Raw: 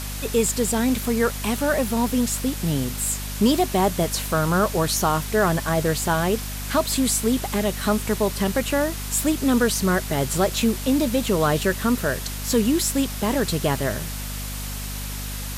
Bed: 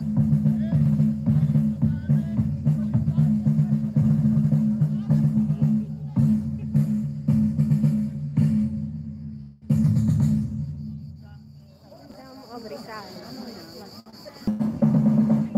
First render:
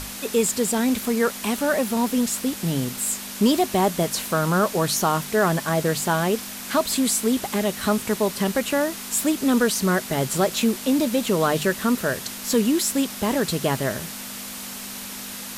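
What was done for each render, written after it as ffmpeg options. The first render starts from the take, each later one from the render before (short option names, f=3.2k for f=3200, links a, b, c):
-af "bandreject=f=50:t=h:w=6,bandreject=f=100:t=h:w=6,bandreject=f=150:t=h:w=6"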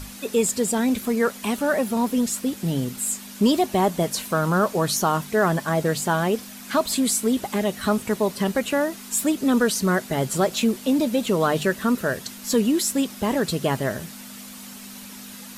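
-af "afftdn=nr=8:nf=-35"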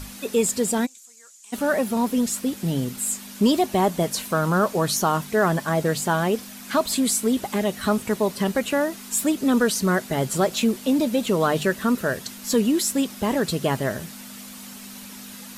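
-filter_complex "[0:a]asplit=3[a][b][c];[a]afade=t=out:st=0.85:d=0.02[d];[b]bandpass=f=7.1k:t=q:w=5.2,afade=t=in:st=0.85:d=0.02,afade=t=out:st=1.52:d=0.02[e];[c]afade=t=in:st=1.52:d=0.02[f];[d][e][f]amix=inputs=3:normalize=0"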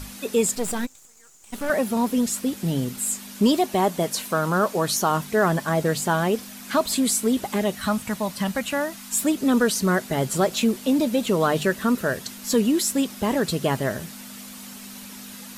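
-filter_complex "[0:a]asettb=1/sr,asplit=3[a][b][c];[a]atrim=end=0.554[d];[b]atrim=start=0.55:end=1.7,asetpts=PTS-STARTPTS,afade=t=in:d=0.004:c=qsin,afade=t=out:st=1.146:d=0.004:c=qsin,aeval=exprs='if(lt(val(0),0),0.251*val(0),val(0))':c=same[e];[c]atrim=start=1.696[f];[d][e]acrossfade=d=0.004:c1=hsin:c2=qsin[g];[g][f]acrossfade=d=0.004:c1=qsin:c2=hsin,asettb=1/sr,asplit=3[h][i][j];[h]atrim=end=3.554[k];[i]atrim=start=3.55:end=5.11,asetpts=PTS-STARTPTS,afade=t=in:d=0.004:c=qsin,afade=t=out:st=1.556:d=0.004:c=qsin,lowshelf=f=120:g=-9[l];[j]atrim=start=5.106[m];[k][l]acrossfade=d=0.004:c1=hsin:c2=qsin[n];[n][m]acrossfade=d=0.004:c1=qsin:c2=hsin,asettb=1/sr,asplit=3[o][p][q];[o]atrim=end=7.754[r];[p]atrim=start=7.75:end=9.13,asetpts=PTS-STARTPTS,afade=t=in:d=0.004:c=qsin,afade=t=out:st=1.376:d=0.004:c=qsin,equalizer=f=400:t=o:w=0.6:g=-13.5[s];[q]atrim=start=9.126[t];[r][s]acrossfade=d=0.004:c1=hsin:c2=qsin[u];[u][t]acrossfade=d=0.004:c1=qsin:c2=hsin"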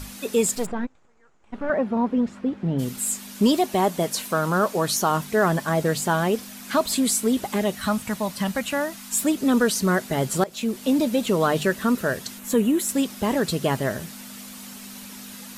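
-filter_complex "[0:a]asplit=3[a][b][c];[a]afade=t=out:st=0.65:d=0.02[d];[b]lowpass=1.6k,afade=t=in:st=0.65:d=0.02,afade=t=out:st=2.78:d=0.02[e];[c]afade=t=in:st=2.78:d=0.02[f];[d][e][f]amix=inputs=3:normalize=0,asettb=1/sr,asplit=3[g][h][i];[g]atrim=end=12.394[j];[h]atrim=start=12.39:end=12.89,asetpts=PTS-STARTPTS,afade=t=in:d=0.004:c=qsin,afade=t=out:st=0.496:d=0.004:c=qsin,equalizer=f=4.9k:t=o:w=0.65:g=-14[k];[i]atrim=start=12.886[l];[j][k]acrossfade=d=0.004:c1=hsin:c2=qsin[m];[m][l]acrossfade=d=0.004:c1=qsin:c2=hsin,asplit=2[n][o];[n]atrim=end=10.44,asetpts=PTS-STARTPTS,afade=t=out:st=10.436:d=0.004:c=hsin:silence=0.133352[p];[o]atrim=start=10.44,asetpts=PTS-STARTPTS,afade=t=in:d=0.44:silence=0.133352[q];[p][q]concat=n=2:v=0:a=1"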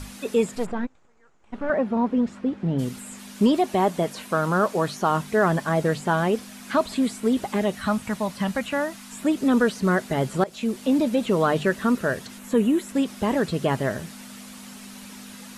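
-filter_complex "[0:a]acrossover=split=3000[a][b];[b]acompressor=threshold=-41dB:ratio=4:attack=1:release=60[c];[a][c]amix=inputs=2:normalize=0,lowpass=f=12k:w=0.5412,lowpass=f=12k:w=1.3066"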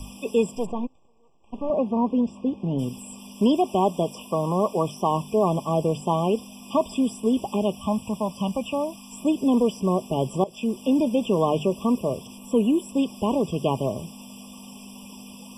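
-filter_complex "[0:a]acrossover=split=190|2700[a][b][c];[a]asoftclip=type=hard:threshold=-29.5dB[d];[d][b][c]amix=inputs=3:normalize=0,afftfilt=real='re*eq(mod(floor(b*sr/1024/1200),2),0)':imag='im*eq(mod(floor(b*sr/1024/1200),2),0)':win_size=1024:overlap=0.75"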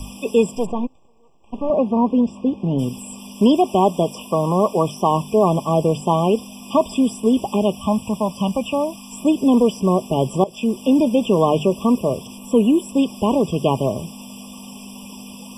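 -af "volume=5.5dB"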